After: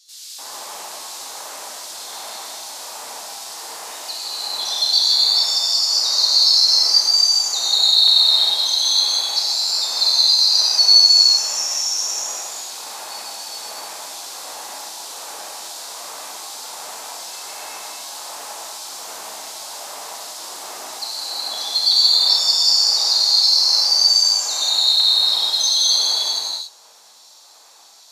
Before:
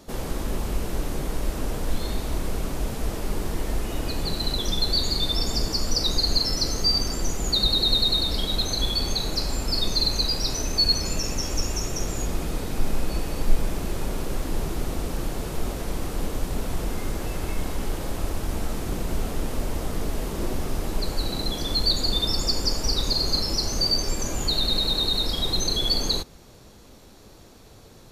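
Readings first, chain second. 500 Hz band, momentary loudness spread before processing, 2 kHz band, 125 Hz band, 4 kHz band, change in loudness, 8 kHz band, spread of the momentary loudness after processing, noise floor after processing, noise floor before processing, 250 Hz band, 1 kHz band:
-7.0 dB, 10 LU, +1.5 dB, under -35 dB, +11.0 dB, +12.0 dB, +10.5 dB, 20 LU, -47 dBFS, -48 dBFS, under -20 dB, +4.0 dB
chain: LFO high-pass square 1.3 Hz 860–4100 Hz; peaking EQ 7 kHz +8.5 dB 1.5 oct; gated-style reverb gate 480 ms flat, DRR -7.5 dB; trim -7.5 dB

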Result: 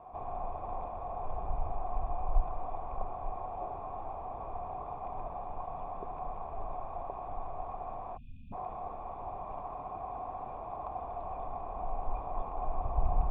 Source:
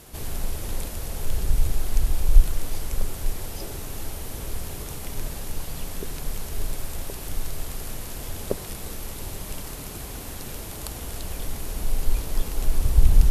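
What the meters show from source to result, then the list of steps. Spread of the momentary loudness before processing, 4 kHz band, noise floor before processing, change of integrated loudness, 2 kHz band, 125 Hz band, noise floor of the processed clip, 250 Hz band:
11 LU, under -30 dB, -36 dBFS, -9.0 dB, -18.5 dB, -14.0 dB, -43 dBFS, -12.5 dB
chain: spectral selection erased 8.17–8.53 s, 270–2400 Hz; cascade formant filter a; trim +14 dB

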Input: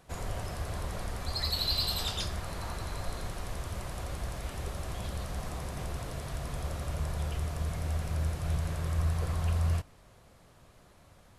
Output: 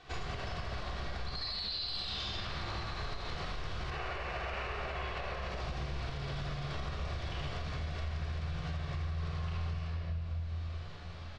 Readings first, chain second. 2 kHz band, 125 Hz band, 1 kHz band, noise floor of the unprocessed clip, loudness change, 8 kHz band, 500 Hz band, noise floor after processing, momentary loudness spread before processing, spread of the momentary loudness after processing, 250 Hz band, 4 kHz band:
+2.5 dB, -4.5 dB, 0.0 dB, -59 dBFS, -4.0 dB, -14.0 dB, -2.0 dB, -43 dBFS, 9 LU, 5 LU, -4.0 dB, -3.5 dB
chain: time-frequency box 3.91–5.35 s, 350–3000 Hz +10 dB; low-pass 4.6 kHz 24 dB/octave; bass shelf 470 Hz -4 dB; early reflections 49 ms -7 dB, 78 ms -6.5 dB; simulated room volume 2100 m³, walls mixed, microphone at 3.5 m; compression 6:1, threshold -35 dBFS, peak gain reduction 17 dB; treble shelf 2.1 kHz +9.5 dB; doubling 14 ms -12 dB; peak limiter -29 dBFS, peak gain reduction 9.5 dB

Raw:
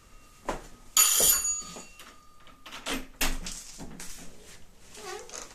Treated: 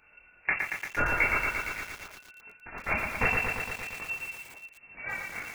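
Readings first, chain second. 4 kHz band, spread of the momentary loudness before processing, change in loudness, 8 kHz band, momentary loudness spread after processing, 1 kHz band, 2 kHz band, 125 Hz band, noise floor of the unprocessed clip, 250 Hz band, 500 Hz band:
-15.0 dB, 23 LU, -5.0 dB, -23.5 dB, 20 LU, +5.0 dB, +11.5 dB, +7.0 dB, -55 dBFS, 0.0 dB, +2.0 dB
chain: resonant low shelf 260 Hz -8.5 dB, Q 1.5; waveshaping leveller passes 1; chorus voices 6, 0.74 Hz, delay 21 ms, depth 2.9 ms; in parallel at -11.5 dB: crossover distortion -39.5 dBFS; on the sum: frequency inversion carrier 2.7 kHz; bit-crushed delay 115 ms, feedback 80%, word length 8-bit, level -4 dB; trim +3 dB

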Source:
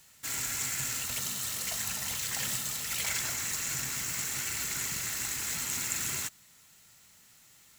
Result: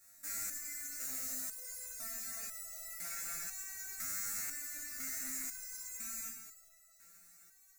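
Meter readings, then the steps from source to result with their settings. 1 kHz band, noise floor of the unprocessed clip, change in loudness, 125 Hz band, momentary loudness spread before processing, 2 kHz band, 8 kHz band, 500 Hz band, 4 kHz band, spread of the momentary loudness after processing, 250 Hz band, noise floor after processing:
-12.0 dB, -59 dBFS, -8.5 dB, -23.5 dB, 2 LU, -12.0 dB, -9.0 dB, -12.0 dB, -16.0 dB, 16 LU, -10.5 dB, -65 dBFS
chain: octave divider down 1 oct, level -1 dB; treble shelf 7.9 kHz +5.5 dB; hum notches 50/100/150/200/250/300 Hz; level held to a coarse grid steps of 21 dB; static phaser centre 630 Hz, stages 8; on a send: shuffle delay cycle 898 ms, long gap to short 1.5:1, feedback 60%, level -23.5 dB; on the sum: gated-style reverb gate 500 ms falling, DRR 2 dB; resonator arpeggio 2 Hz 100–660 Hz; trim +11.5 dB

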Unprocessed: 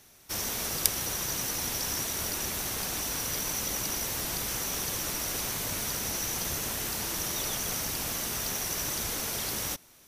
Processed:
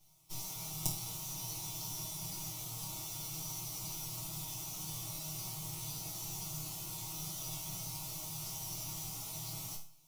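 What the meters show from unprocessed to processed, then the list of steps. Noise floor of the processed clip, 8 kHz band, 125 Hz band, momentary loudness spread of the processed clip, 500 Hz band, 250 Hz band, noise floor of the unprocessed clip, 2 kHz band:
-50 dBFS, -10.5 dB, -3.5 dB, 1 LU, -16.0 dB, -9.5 dB, -57 dBFS, -19.0 dB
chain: comb filter that takes the minimum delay 6.3 ms; resonant low shelf 200 Hz +8 dB, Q 1.5; static phaser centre 330 Hz, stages 8; chord resonator D#2 minor, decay 0.42 s; trim +5 dB

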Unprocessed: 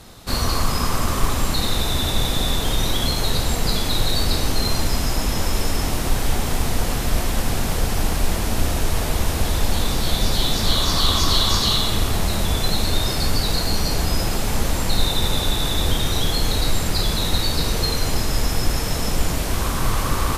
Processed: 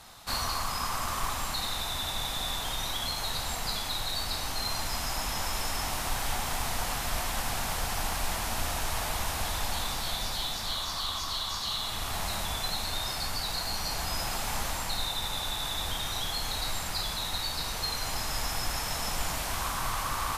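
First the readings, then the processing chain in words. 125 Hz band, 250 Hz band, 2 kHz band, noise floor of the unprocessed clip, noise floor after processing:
-16.5 dB, -17.5 dB, -6.5 dB, -23 dBFS, -34 dBFS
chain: resonant low shelf 590 Hz -9 dB, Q 1.5; gain riding 0.5 s; trim -8 dB

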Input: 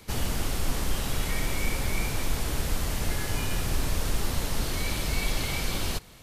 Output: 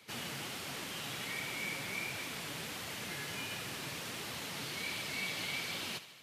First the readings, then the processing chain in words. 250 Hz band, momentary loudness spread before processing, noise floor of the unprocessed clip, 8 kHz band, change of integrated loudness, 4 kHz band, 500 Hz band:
-11.5 dB, 2 LU, -44 dBFS, -9.5 dB, -8.5 dB, -5.0 dB, -10.5 dB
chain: high-pass 120 Hz 24 dB/octave; peaking EQ 2.6 kHz +8.5 dB 1.9 oct; flange 1.4 Hz, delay 1.1 ms, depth 6.3 ms, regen +59%; on a send: thinning echo 76 ms, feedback 67%, level -14 dB; on the sum: trim -7.5 dB

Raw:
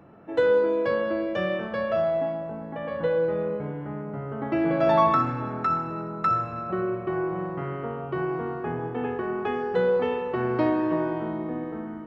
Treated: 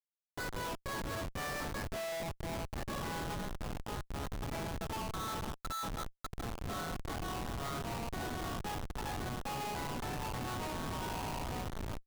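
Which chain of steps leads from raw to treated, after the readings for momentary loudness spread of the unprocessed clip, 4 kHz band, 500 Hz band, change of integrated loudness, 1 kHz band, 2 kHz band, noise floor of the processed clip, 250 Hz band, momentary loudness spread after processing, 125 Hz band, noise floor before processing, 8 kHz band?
11 LU, +1.5 dB, -19.5 dB, -13.5 dB, -12.0 dB, -8.5 dB, -74 dBFS, -14.5 dB, 4 LU, -7.0 dB, -36 dBFS, no reading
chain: steep high-pass 710 Hz 72 dB/octave; reverse; compression 6:1, threshold -40 dBFS, peak gain reduction 20.5 dB; reverse; chorus 0.31 Hz, delay 17 ms, depth 3.4 ms; Schmitt trigger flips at -43.5 dBFS; trim +8 dB

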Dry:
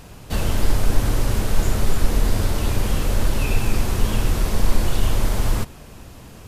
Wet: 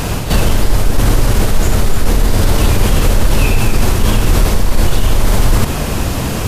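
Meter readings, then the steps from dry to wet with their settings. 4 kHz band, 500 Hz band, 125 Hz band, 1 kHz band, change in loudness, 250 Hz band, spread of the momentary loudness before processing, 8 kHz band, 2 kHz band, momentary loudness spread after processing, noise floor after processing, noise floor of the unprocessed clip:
+9.5 dB, +9.5 dB, +9.0 dB, +9.5 dB, +8.5 dB, +9.5 dB, 5 LU, +9.5 dB, +9.5 dB, 3 LU, -18 dBFS, -41 dBFS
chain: reverse; compression 10:1, threshold -26 dBFS, peak gain reduction 19 dB; reverse; reverse echo 49 ms -14 dB; loudness maximiser +25 dB; trim -1 dB

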